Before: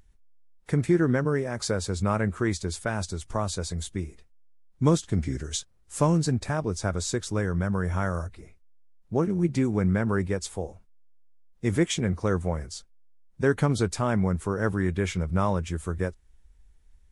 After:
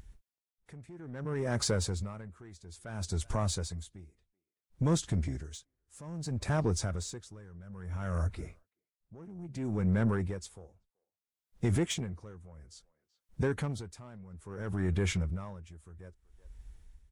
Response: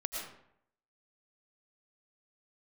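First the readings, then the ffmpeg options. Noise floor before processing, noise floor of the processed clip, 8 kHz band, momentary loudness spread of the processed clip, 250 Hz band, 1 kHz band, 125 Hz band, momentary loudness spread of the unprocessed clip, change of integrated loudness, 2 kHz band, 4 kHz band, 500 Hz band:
-59 dBFS, under -85 dBFS, -5.5 dB, 20 LU, -9.5 dB, -11.5 dB, -6.5 dB, 9 LU, -6.5 dB, -10.0 dB, -5.0 dB, -10.0 dB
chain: -filter_complex "[0:a]highpass=f=49:p=1,lowshelf=f=120:g=8,asplit=2[s0][s1];[s1]acompressor=threshold=0.0126:ratio=6,volume=0.891[s2];[s0][s2]amix=inputs=2:normalize=0,alimiter=limit=0.15:level=0:latency=1:release=66,asoftclip=type=tanh:threshold=0.1,asplit=2[s3][s4];[s4]adelay=380,highpass=300,lowpass=3400,asoftclip=type=hard:threshold=0.0355,volume=0.0355[s5];[s3][s5]amix=inputs=2:normalize=0,aeval=exprs='val(0)*pow(10,-22*(0.5-0.5*cos(2*PI*0.6*n/s))/20)':c=same"

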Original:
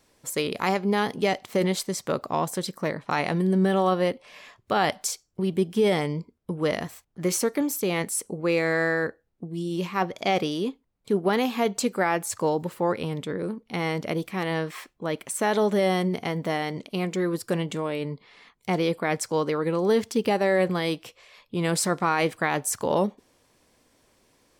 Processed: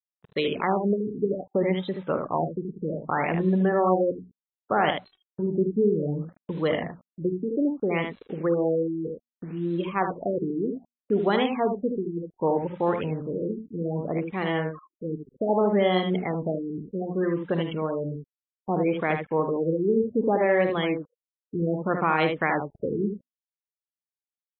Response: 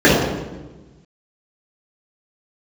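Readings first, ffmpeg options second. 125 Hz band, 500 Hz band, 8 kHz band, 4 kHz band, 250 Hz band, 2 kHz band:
0.0 dB, +0.5 dB, under -40 dB, -5.0 dB, +0.5 dB, -3.0 dB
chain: -filter_complex "[0:a]afftfilt=real='re*gte(hypot(re,im),0.0282)':imag='im*gte(hypot(re,im),0.0282)':win_size=1024:overlap=0.75,bandreject=f=60:t=h:w=6,bandreject=f=120:t=h:w=6,bandreject=f=180:t=h:w=6,bandreject=f=240:t=h:w=6,adynamicequalizer=threshold=0.002:dfrequency=3300:dqfactor=7.8:tfrequency=3300:tqfactor=7.8:attack=5:release=100:ratio=0.375:range=2.5:mode=boostabove:tftype=bell,acrossover=split=640|7000[s0][s1][s2];[s0]acrusher=bits=7:mix=0:aa=0.000001[s3];[s1]acompressor=mode=upward:threshold=0.00355:ratio=2.5[s4];[s2]aphaser=in_gain=1:out_gain=1:delay=2.8:decay=0.62:speed=0.28:type=sinusoidal[s5];[s3][s4][s5]amix=inputs=3:normalize=0,aecho=1:1:49|76:0.2|0.473,afftfilt=real='re*lt(b*sr/1024,440*pow(4200/440,0.5+0.5*sin(2*PI*0.64*pts/sr)))':imag='im*lt(b*sr/1024,440*pow(4200/440,0.5+0.5*sin(2*PI*0.64*pts/sr)))':win_size=1024:overlap=0.75"

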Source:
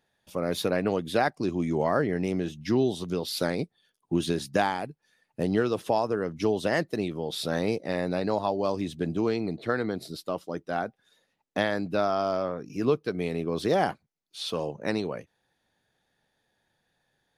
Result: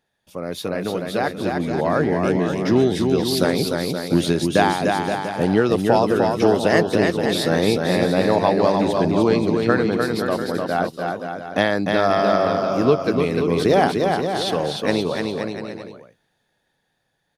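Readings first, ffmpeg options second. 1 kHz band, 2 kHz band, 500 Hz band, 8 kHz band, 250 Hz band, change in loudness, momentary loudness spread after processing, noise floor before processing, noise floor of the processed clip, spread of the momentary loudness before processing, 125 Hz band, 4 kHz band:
+9.0 dB, +9.0 dB, +9.0 dB, +9.0 dB, +9.5 dB, +9.0 dB, 8 LU, -77 dBFS, -71 dBFS, 9 LU, +9.0 dB, +9.5 dB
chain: -af "dynaudnorm=f=290:g=13:m=2.82,aecho=1:1:300|525|693.8|820.3|915.2:0.631|0.398|0.251|0.158|0.1"

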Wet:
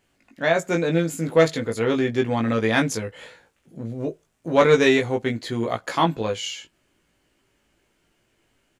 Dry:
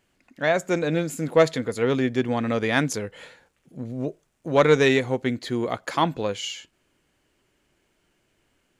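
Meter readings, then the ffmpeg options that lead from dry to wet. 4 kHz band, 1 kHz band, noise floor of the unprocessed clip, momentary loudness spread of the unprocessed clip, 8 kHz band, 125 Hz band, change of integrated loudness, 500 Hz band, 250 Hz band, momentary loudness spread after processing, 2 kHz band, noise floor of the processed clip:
+1.5 dB, +1.5 dB, -70 dBFS, 14 LU, +1.5 dB, +1.5 dB, +1.5 dB, +1.5 dB, +1.5 dB, 14 LU, +1.5 dB, -68 dBFS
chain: -filter_complex "[0:a]asplit=2[s0][s1];[s1]adelay=18,volume=0.668[s2];[s0][s2]amix=inputs=2:normalize=0"

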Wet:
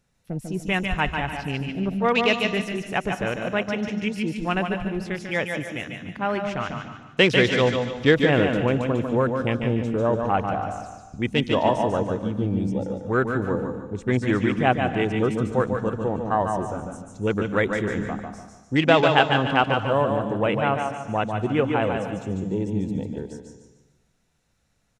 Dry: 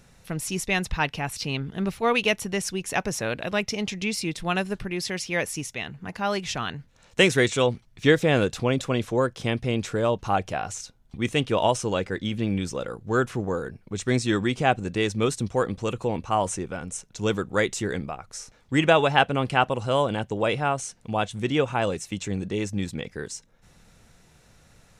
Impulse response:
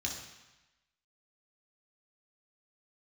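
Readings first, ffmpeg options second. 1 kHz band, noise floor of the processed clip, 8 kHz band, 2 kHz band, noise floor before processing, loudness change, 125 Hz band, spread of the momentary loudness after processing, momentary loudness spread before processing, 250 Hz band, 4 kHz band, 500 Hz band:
+2.0 dB, -65 dBFS, under -10 dB, +2.0 dB, -58 dBFS, +2.0 dB, +2.5 dB, 12 LU, 12 LU, +3.5 dB, +0.5 dB, +2.0 dB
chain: -filter_complex "[0:a]afwtdn=0.0251,aecho=1:1:147|294|441|588:0.531|0.181|0.0614|0.0209,asplit=2[s0][s1];[1:a]atrim=start_sample=2205,highshelf=f=11000:g=9.5,adelay=142[s2];[s1][s2]afir=irnorm=-1:irlink=0,volume=0.237[s3];[s0][s3]amix=inputs=2:normalize=0,volume=1.12"

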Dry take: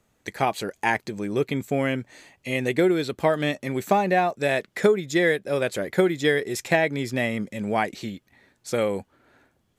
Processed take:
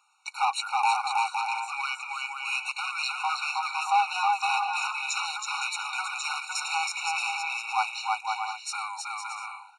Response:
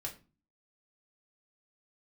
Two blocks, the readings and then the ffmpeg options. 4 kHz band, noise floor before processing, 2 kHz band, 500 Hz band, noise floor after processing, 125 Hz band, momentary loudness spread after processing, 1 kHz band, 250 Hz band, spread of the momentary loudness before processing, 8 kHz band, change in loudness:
+2.5 dB, -69 dBFS, -2.0 dB, under -35 dB, -47 dBFS, under -40 dB, 8 LU, +2.5 dB, under -40 dB, 9 LU, +4.0 dB, -4.0 dB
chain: -filter_complex "[0:a]aecho=1:1:320|512|627.2|696.3|737.8:0.631|0.398|0.251|0.158|0.1,asplit=2[s0][s1];[s1]highpass=f=720:p=1,volume=12.6,asoftclip=type=tanh:threshold=0.562[s2];[s0][s2]amix=inputs=2:normalize=0,lowpass=f=7400:p=1,volume=0.501,aresample=22050,aresample=44100,afftfilt=real='re*eq(mod(floor(b*sr/1024/740),2),1)':imag='im*eq(mod(floor(b*sr/1024/740),2),1)':win_size=1024:overlap=0.75,volume=0.447"

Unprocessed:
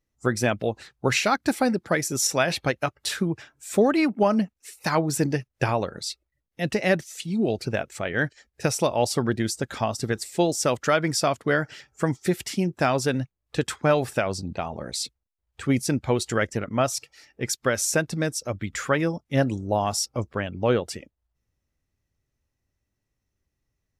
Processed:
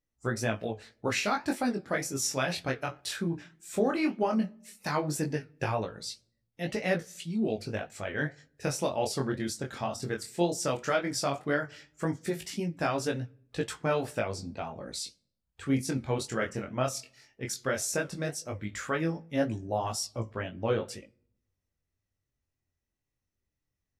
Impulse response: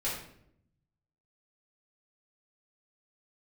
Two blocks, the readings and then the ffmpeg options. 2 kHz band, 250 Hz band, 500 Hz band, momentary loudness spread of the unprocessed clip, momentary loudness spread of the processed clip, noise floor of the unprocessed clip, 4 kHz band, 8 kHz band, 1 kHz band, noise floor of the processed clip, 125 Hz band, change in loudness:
-7.0 dB, -6.5 dB, -7.0 dB, 9 LU, 9 LU, -81 dBFS, -7.0 dB, -7.0 dB, -6.5 dB, -85 dBFS, -7.0 dB, -7.0 dB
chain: -filter_complex "[0:a]flanger=delay=9.7:depth=5.6:regen=-65:speed=1.9:shape=sinusoidal,asplit=2[s0][s1];[1:a]atrim=start_sample=2205[s2];[s1][s2]afir=irnorm=-1:irlink=0,volume=0.0422[s3];[s0][s3]amix=inputs=2:normalize=0,flanger=delay=17.5:depth=6:speed=0.15"

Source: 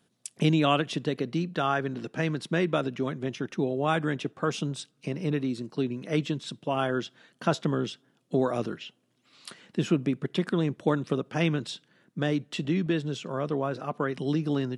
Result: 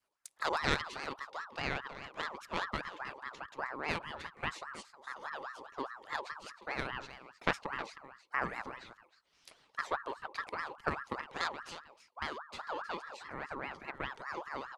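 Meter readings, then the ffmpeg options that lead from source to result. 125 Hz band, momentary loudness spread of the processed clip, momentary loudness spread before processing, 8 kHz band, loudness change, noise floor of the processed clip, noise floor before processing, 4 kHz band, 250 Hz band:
-20.5 dB, 10 LU, 9 LU, -9.5 dB, -10.5 dB, -70 dBFS, -71 dBFS, -7.5 dB, -20.5 dB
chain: -filter_complex "[0:a]bandreject=f=50:t=h:w=6,bandreject=f=100:t=h:w=6,bandreject=f=150:t=h:w=6,bandreject=f=200:t=h:w=6,bandreject=f=250:t=h:w=6,bandreject=f=300:t=h:w=6,bandreject=f=350:t=h:w=6,adynamicequalizer=threshold=0.0178:dfrequency=240:dqfactor=0.79:tfrequency=240:tqfactor=0.79:attack=5:release=100:ratio=0.375:range=2.5:mode=cutabove:tftype=bell,aeval=exprs='0.355*(cos(1*acos(clip(val(0)/0.355,-1,1)))-cos(1*PI/2))+0.0891*(cos(3*acos(clip(val(0)/0.355,-1,1)))-cos(3*PI/2))':c=same,asplit=2[s0][s1];[s1]aecho=0:1:314:0.224[s2];[s0][s2]amix=inputs=2:normalize=0,aeval=exprs='val(0)*sin(2*PI*1100*n/s+1100*0.4/4.9*sin(2*PI*4.9*n/s))':c=same,volume=1.26"

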